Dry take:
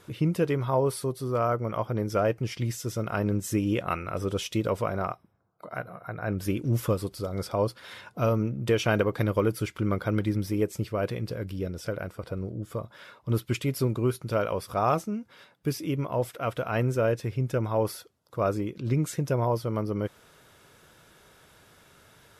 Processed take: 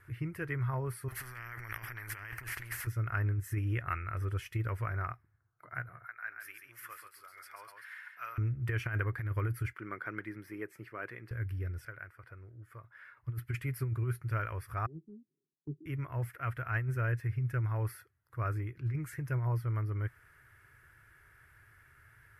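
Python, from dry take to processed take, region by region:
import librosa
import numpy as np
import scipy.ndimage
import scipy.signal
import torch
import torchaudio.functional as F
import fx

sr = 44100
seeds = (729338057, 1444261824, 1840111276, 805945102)

y = fx.chain(x, sr, fx.over_compress(threshold_db=-36.0, ratio=-1.0),
    fx.spectral_comp(ratio=4.0), at=(1.08, 2.87))
y = fx.chain(y, sr, fx.highpass(hz=1300.0, slope=12),
    fx.echo_single(ms=136, db=-6.0), at=(6.05, 8.38))
y = fx.chain(y, sr, fx.highpass(hz=200.0, slope=24),
    fx.high_shelf(hz=5700.0, db=-8.0), at=(9.73, 11.31))
y = fx.chain(y, sr, fx.highpass(hz=1200.0, slope=6),
    fx.tilt_eq(slope=-2.0), at=(11.85, 13.17))
y = fx.chain(y, sr, fx.cheby1_bandpass(low_hz=150.0, high_hz=410.0, order=4),
    fx.band_widen(depth_pct=70), at=(14.86, 15.86))
y = fx.curve_eq(y, sr, hz=(120.0, 190.0, 360.0, 520.0, 960.0, 1800.0, 3200.0, 6900.0, 11000.0), db=(0, -22, -13, -21, -13, 3, -18, -20, -9))
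y = fx.over_compress(y, sr, threshold_db=-30.0, ratio=-0.5)
y = fx.notch(y, sr, hz=3700.0, q=9.9)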